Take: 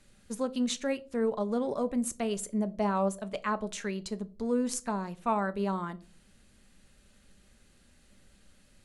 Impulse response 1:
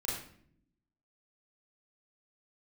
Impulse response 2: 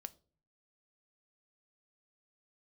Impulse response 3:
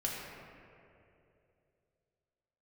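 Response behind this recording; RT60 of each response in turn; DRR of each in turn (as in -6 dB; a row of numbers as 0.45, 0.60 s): 2; 0.60 s, not exponential, 2.8 s; -6.0, 12.0, -4.5 dB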